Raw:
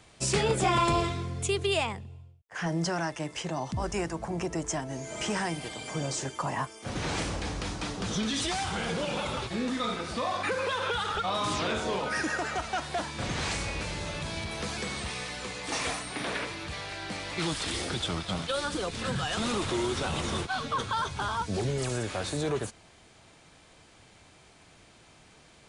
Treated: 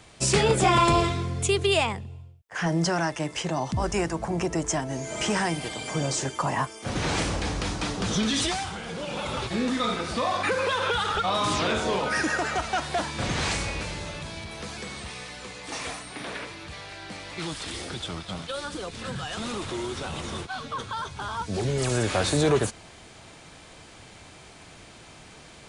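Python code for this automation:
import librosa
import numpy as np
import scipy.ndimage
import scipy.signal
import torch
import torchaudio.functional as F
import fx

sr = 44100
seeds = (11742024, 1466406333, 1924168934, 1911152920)

y = fx.gain(x, sr, db=fx.line((8.44, 5.0), (8.82, -5.0), (9.49, 4.5), (13.49, 4.5), (14.38, -2.5), (21.21, -2.5), (22.13, 8.5)))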